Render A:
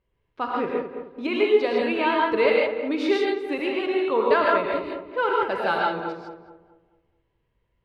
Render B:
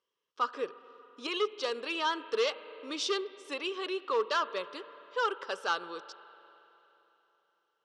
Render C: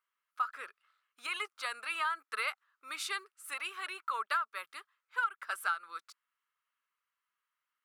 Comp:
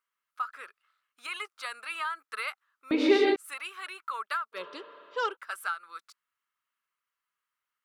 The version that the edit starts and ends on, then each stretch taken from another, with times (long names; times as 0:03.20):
C
0:02.91–0:03.36: punch in from A
0:04.57–0:05.32: punch in from B, crossfade 0.10 s